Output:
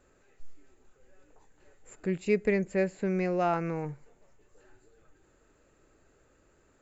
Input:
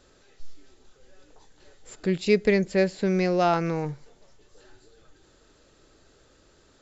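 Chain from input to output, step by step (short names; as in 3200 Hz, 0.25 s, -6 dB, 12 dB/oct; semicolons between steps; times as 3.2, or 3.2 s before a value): band shelf 4300 Hz -11.5 dB 1.1 oct; gain -5.5 dB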